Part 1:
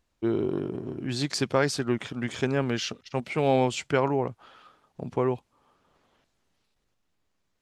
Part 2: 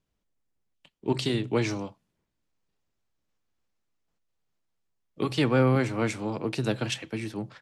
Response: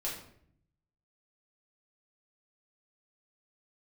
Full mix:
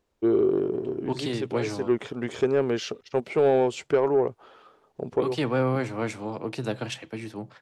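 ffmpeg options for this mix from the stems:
-filter_complex "[0:a]alimiter=limit=-14dB:level=0:latency=1:release=416,equalizer=f=410:t=o:w=0.69:g=10.5,volume=-3.5dB[a];[1:a]volume=-4dB,asplit=2[b][c];[c]apad=whole_len=335774[d];[a][d]sidechaincompress=threshold=-37dB:ratio=8:attack=6.1:release=137[e];[e][b]amix=inputs=2:normalize=0,equalizer=f=740:w=0.72:g=5,asoftclip=type=tanh:threshold=-11.5dB"

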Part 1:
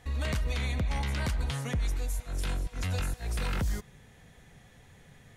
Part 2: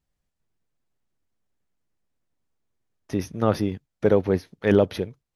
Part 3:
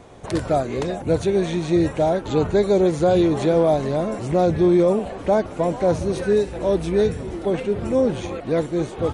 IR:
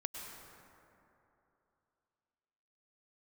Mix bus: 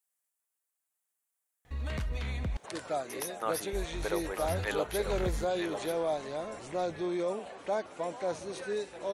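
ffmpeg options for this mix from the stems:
-filter_complex "[0:a]highshelf=f=4.7k:g=-8,adelay=1650,volume=-4dB,asplit=3[a][b][c];[a]atrim=end=2.57,asetpts=PTS-STARTPTS,afade=t=out:st=2.566:d=0.004:c=hsin[d];[b]atrim=start=2.57:end=3.73,asetpts=PTS-STARTPTS,volume=0[e];[c]atrim=start=3.73,asetpts=PTS-STARTPTS,afade=t=in:d=0.004:c=hsin[f];[d][e][f]concat=n=3:v=0:a=1[g];[1:a]highpass=890,highshelf=f=6.7k:t=q:w=1.5:g=12,volume=-4dB,asplit=3[h][i][j];[i]volume=-7dB[k];[2:a]highpass=f=1k:p=1,adelay=2400,volume=-7.5dB[l];[j]apad=whole_len=309468[m];[g][m]sidechaincompress=threshold=-46dB:ratio=8:attack=16:release=137[n];[k]aecho=0:1:943:1[o];[n][h][l][o]amix=inputs=4:normalize=0"

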